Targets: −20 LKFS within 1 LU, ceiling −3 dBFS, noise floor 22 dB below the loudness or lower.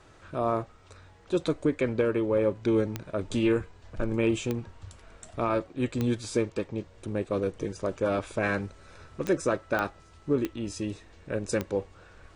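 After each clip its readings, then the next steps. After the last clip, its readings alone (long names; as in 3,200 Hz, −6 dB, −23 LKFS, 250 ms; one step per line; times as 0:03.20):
number of clicks 7; integrated loudness −29.5 LKFS; sample peak −14.0 dBFS; target loudness −20.0 LKFS
→ click removal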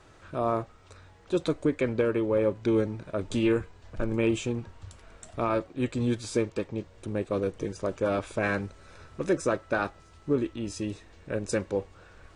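number of clicks 0; integrated loudness −29.5 LKFS; sample peak −14.0 dBFS; target loudness −20.0 LKFS
→ level +9.5 dB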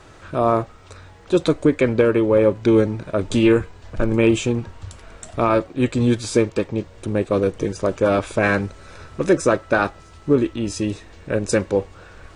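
integrated loudness −20.0 LKFS; sample peak −4.5 dBFS; background noise floor −46 dBFS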